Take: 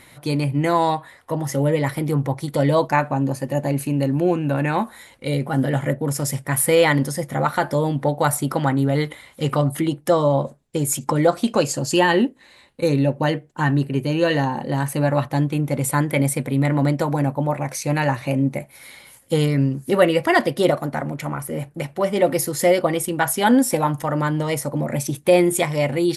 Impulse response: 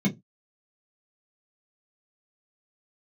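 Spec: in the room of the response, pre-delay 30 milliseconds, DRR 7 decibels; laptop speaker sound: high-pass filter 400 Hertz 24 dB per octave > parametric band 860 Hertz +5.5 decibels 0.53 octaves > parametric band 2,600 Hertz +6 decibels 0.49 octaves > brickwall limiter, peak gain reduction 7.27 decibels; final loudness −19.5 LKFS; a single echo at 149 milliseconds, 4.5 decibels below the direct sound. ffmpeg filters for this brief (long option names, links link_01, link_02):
-filter_complex "[0:a]aecho=1:1:149:0.596,asplit=2[link_01][link_02];[1:a]atrim=start_sample=2205,adelay=30[link_03];[link_02][link_03]afir=irnorm=-1:irlink=0,volume=-15.5dB[link_04];[link_01][link_04]amix=inputs=2:normalize=0,highpass=frequency=400:width=0.5412,highpass=frequency=400:width=1.3066,equalizer=frequency=860:width_type=o:width=0.53:gain=5.5,equalizer=frequency=2600:width_type=o:width=0.49:gain=6,volume=1.5dB,alimiter=limit=-6.5dB:level=0:latency=1"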